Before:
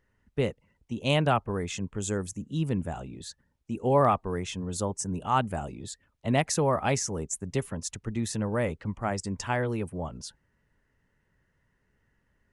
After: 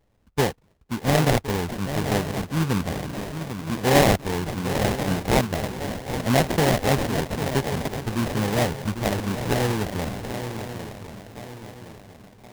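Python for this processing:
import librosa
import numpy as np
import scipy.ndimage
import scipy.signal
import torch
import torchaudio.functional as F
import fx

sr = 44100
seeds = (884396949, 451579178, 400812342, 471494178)

y = fx.echo_swing(x, sr, ms=1065, ratio=3, feedback_pct=41, wet_db=-9.5)
y = fx.sample_hold(y, sr, seeds[0], rate_hz=1300.0, jitter_pct=20)
y = y * librosa.db_to_amplitude(5.0)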